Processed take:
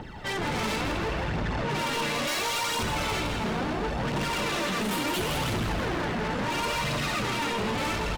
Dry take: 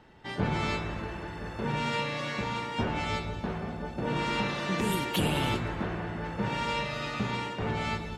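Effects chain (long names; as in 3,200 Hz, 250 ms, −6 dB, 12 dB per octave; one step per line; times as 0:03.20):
0:02.27–0:02.83: bass and treble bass −14 dB, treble +15 dB
in parallel at +2 dB: brickwall limiter −25.5 dBFS, peak gain reduction 10 dB
on the sum: gain into a clipping stage and back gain 26 dB
phase shifter 0.72 Hz, delay 4.9 ms, feedback 64%
soft clipping −32.5 dBFS, distortion −8 dB
0:00.81–0:01.70: high-frequency loss of the air 54 metres
on a send: echo with shifted repeats 161 ms, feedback 52%, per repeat +85 Hz, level −7.5 dB
on the sum: level +5 dB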